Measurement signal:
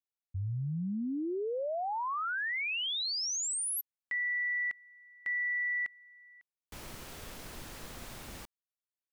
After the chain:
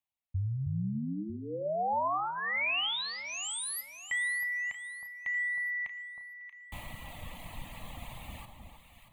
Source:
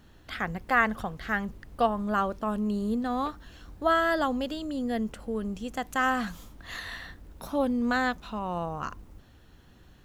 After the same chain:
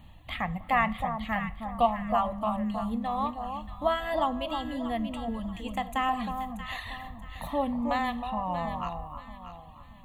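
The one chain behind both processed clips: static phaser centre 1.5 kHz, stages 6; reverb removal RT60 1.5 s; in parallel at -2 dB: compression, threshold -40 dBFS; on the sum: treble shelf 6.5 kHz -7 dB; on a send: echo whose repeats swap between lows and highs 316 ms, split 1.1 kHz, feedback 57%, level -5 dB; on the sum: two-slope reverb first 0.45 s, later 2.6 s, from -18 dB, DRR 13 dB; trim +1.5 dB

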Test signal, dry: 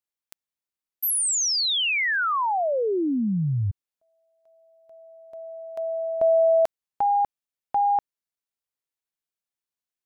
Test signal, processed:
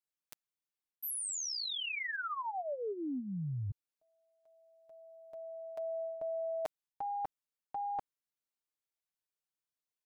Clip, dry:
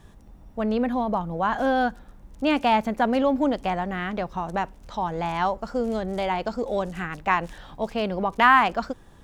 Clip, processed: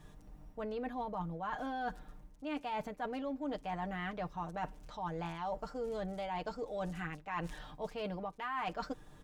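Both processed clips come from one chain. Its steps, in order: comb 6.6 ms, depth 63%; reverse; compression 12:1, threshold -29 dBFS; reverse; trim -6.5 dB

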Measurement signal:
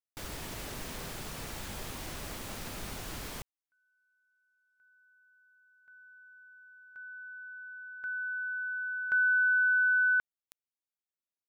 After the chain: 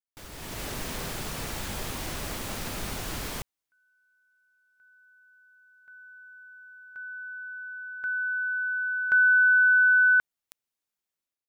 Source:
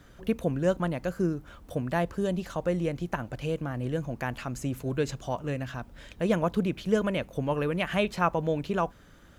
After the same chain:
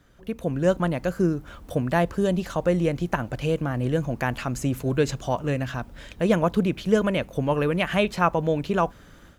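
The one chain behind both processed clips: level rider gain up to 11.5 dB; trim -5 dB

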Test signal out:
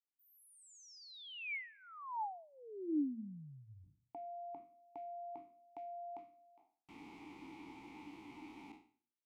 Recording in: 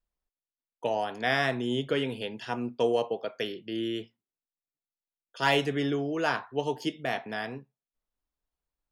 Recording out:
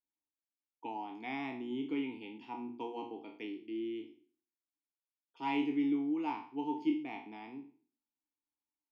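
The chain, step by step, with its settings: spectral sustain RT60 0.44 s; vowel filter u; de-hum 118.9 Hz, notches 3; trim +2 dB

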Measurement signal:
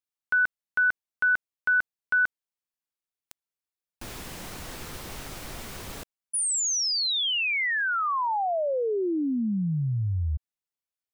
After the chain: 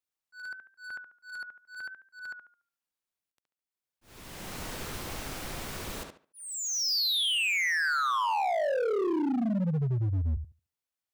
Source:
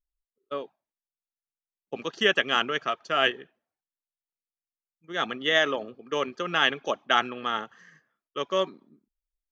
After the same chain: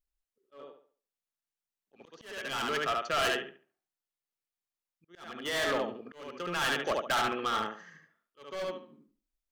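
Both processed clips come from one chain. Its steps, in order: tape echo 72 ms, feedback 28%, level -3.5 dB, low-pass 3.8 kHz; overload inside the chain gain 25.5 dB; slow attack 611 ms

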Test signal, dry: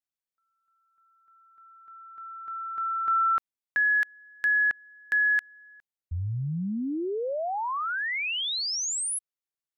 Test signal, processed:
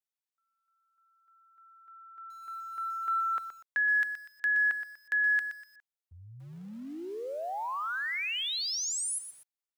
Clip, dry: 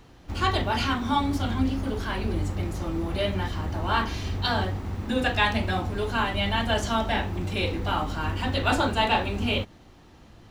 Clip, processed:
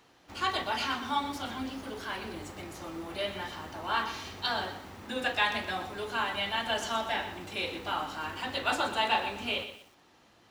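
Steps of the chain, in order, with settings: high-pass 620 Hz 6 dB/octave; bit-crushed delay 122 ms, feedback 35%, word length 8-bit, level -10 dB; trim -3.5 dB

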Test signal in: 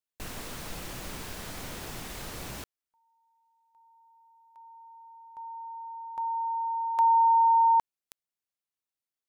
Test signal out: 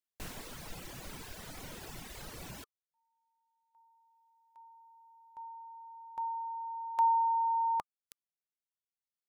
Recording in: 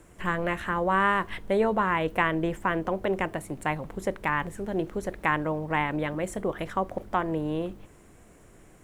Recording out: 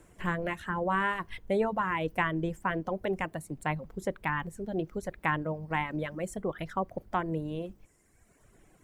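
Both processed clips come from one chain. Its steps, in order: band-stop 1.2 kHz, Q 28; reverb removal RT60 1.5 s; dynamic bell 160 Hz, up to +6 dB, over -51 dBFS, Q 3.1; trim -3.5 dB

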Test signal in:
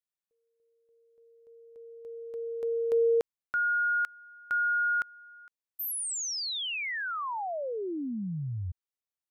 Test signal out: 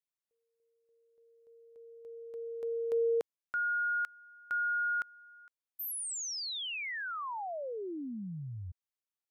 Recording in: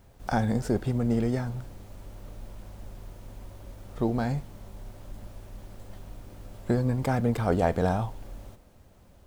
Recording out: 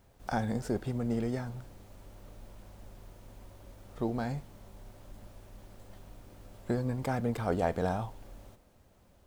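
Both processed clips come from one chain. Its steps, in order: bass shelf 180 Hz -4 dB; trim -4.5 dB

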